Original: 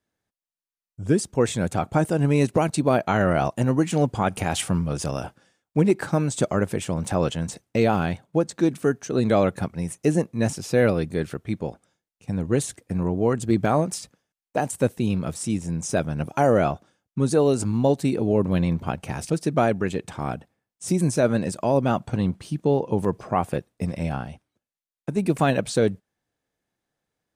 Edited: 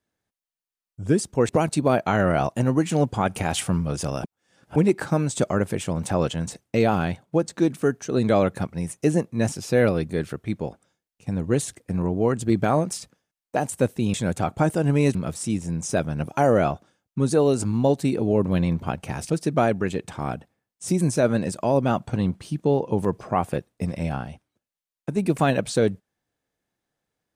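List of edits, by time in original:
1.49–2.5 move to 15.15
5.25–5.77 reverse

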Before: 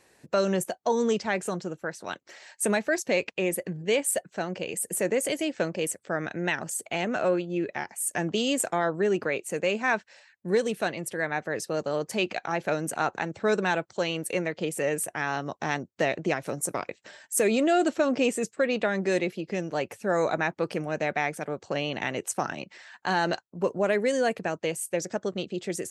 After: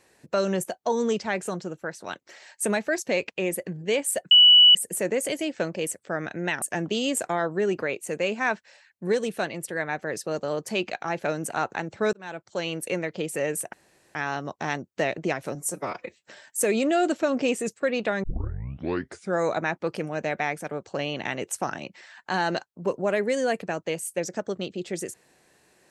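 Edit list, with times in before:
4.31–4.75 bleep 2950 Hz -10 dBFS
6.62–8.05 cut
13.56–14.13 fade in
15.16 insert room tone 0.42 s
16.56–17.05 stretch 1.5×
19 tape start 1.15 s

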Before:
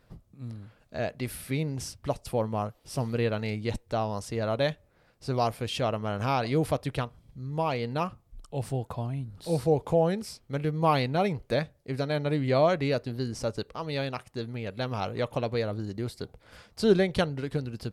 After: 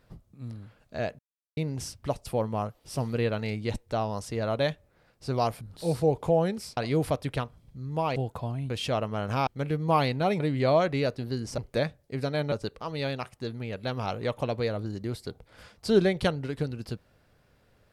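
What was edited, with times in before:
1.19–1.57 mute
5.61–6.38 swap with 9.25–10.41
7.77–8.71 cut
11.34–12.28 move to 13.46

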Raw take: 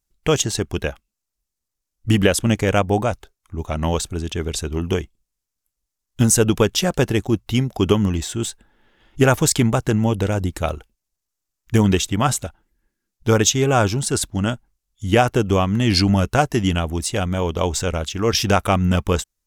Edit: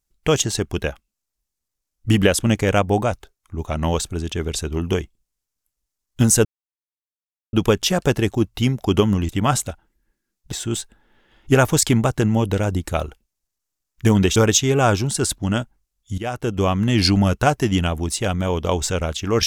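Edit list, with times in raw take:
6.45 insert silence 1.08 s
12.05–13.28 move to 8.21
15.1–15.68 fade in, from -18 dB

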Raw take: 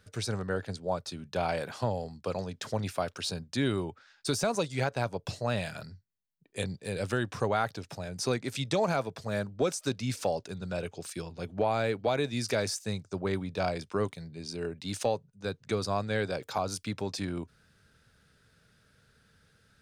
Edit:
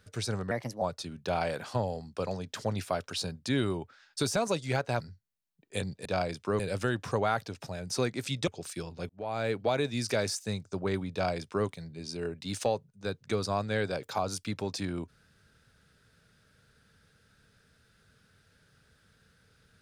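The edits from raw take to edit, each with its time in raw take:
0.51–0.89 speed 125%
5.08–5.83 cut
8.76–10.87 cut
11.49–11.93 fade in
13.52–14.06 copy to 6.88

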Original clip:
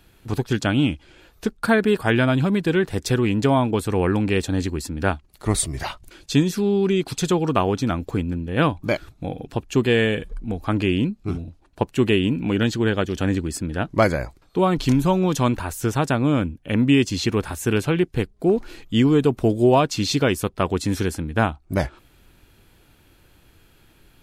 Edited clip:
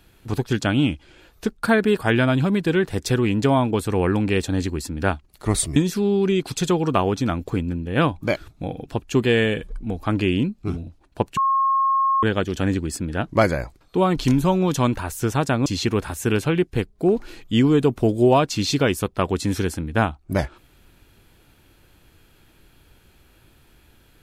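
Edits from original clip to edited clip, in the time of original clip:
5.76–6.37 cut
11.98–12.84 bleep 1080 Hz -16 dBFS
16.27–17.07 cut

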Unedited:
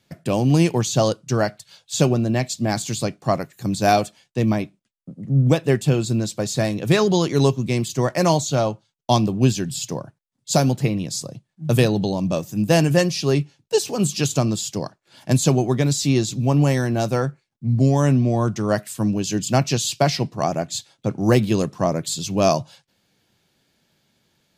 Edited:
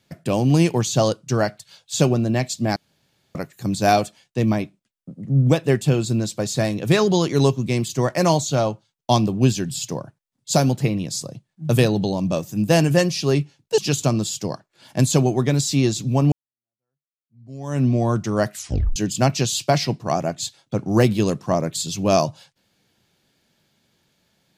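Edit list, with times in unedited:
2.76–3.35 room tone
13.78–14.1 cut
16.64–18.17 fade in exponential
18.85 tape stop 0.43 s

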